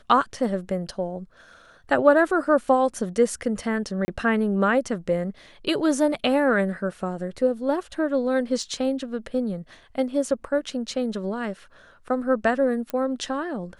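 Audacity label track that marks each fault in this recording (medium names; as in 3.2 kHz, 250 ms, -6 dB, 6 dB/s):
4.050000	4.080000	dropout 30 ms
8.630000	8.630000	dropout 2.1 ms
12.900000	12.900000	pop -15 dBFS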